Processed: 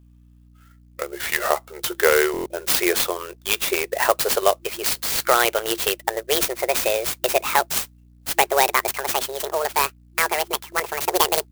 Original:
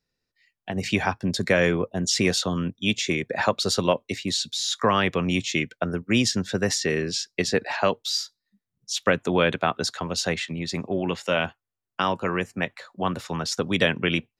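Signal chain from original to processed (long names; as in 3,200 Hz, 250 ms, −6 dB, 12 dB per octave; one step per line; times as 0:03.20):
gliding playback speed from 63% → 187%
brick-wall band-pass 340–11,000 Hz
mains hum 60 Hz, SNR 28 dB
buffer that repeats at 0:02.32, samples 1,024, times 5
converter with an unsteady clock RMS 0.051 ms
level +4.5 dB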